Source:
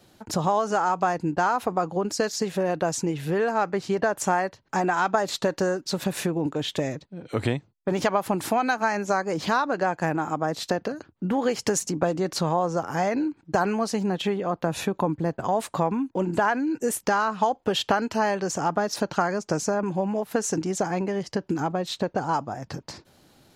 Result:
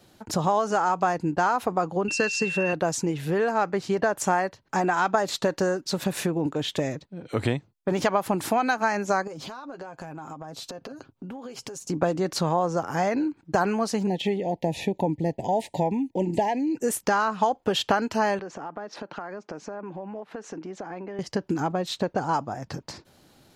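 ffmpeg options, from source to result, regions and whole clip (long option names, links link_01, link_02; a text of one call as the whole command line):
ffmpeg -i in.wav -filter_complex "[0:a]asettb=1/sr,asplit=3[link_01][link_02][link_03];[link_01]atrim=end=2.084[link_04];[link_02]atrim=start=2.08:end=2.73,asetpts=PTS-STARTPTS,afade=type=in:duration=0.004:curve=qsin,afade=type=out:start_time=0.646:duration=0.004:curve=qsin,highpass=140,equalizer=frequency=150:width_type=q:width=4:gain=6,equalizer=frequency=700:width_type=q:width=4:gain=-7,equalizer=frequency=1600:width_type=q:width=4:gain=6,lowpass=frequency=9200:width=0.5412,lowpass=frequency=9200:width=1.3066,aeval=exprs='val(0)+0.0398*sin(2*PI*2700*n/s)':channel_layout=same[link_05];[link_03]atrim=start=2.726[link_06];[link_04][link_05]acrossfade=duration=0.004:curve1=hsin:curve2=qsin[link_07];[link_07][link_06]acrossfade=duration=0.004:curve1=qsin:curve2=hsin,asettb=1/sr,asplit=3[link_08][link_09][link_10];[link_08]atrim=end=9.274[link_11];[link_09]atrim=start=9.27:end=11.9,asetpts=PTS-STARTPTS,afade=type=in:duration=0.004:curve=qsin,afade=type=out:start_time=2.626:duration=0.004:curve=qsin,equalizer=frequency=1900:width=4.5:gain=-8.5,aecho=1:1:7.5:0.47,atrim=end_sample=115983,acompressor=threshold=-34dB:ratio=16:attack=3.2:release=140:knee=1:detection=peak[link_12];[link_10]atrim=start=11.896[link_13];[link_11][link_12]acrossfade=duration=0.004:curve1=hsin:curve2=qsin[link_14];[link_14][link_13]acrossfade=duration=0.004:curve1=qsin:curve2=hsin,asettb=1/sr,asplit=3[link_15][link_16][link_17];[link_15]atrim=end=14.074[link_18];[link_16]atrim=start=14.07:end=16.77,asetpts=PTS-STARTPTS,afade=type=in:duration=0.004:curve=qsin,afade=type=out:start_time=2.696:duration=0.004:curve=qsin,acrossover=split=5000[link_19][link_20];[link_20]acompressor=threshold=-46dB:ratio=4:attack=1:release=60[link_21];[link_19][link_21]amix=inputs=2:normalize=0,asuperstop=centerf=1300:order=12:qfactor=1.5[link_22];[link_17]atrim=start=16.766[link_23];[link_18][link_22]acrossfade=duration=0.004:curve1=hsin:curve2=qsin[link_24];[link_24][link_23]acrossfade=duration=0.004:curve1=qsin:curve2=hsin,asettb=1/sr,asplit=3[link_25][link_26][link_27];[link_25]atrim=end=18.394[link_28];[link_26]atrim=start=18.39:end=21.19,asetpts=PTS-STARTPTS,afade=type=in:duration=0.004:curve=qsin,afade=type=out:start_time=2.796:duration=0.004:curve=qsin,highpass=230,lowpass=2700,acompressor=threshold=-35dB:ratio=3:attack=3.2:release=140:knee=1:detection=peak[link_29];[link_27]atrim=start=21.186[link_30];[link_28][link_29]acrossfade=duration=0.004:curve1=hsin:curve2=qsin[link_31];[link_31][link_30]acrossfade=duration=0.004:curve1=qsin:curve2=hsin" out.wav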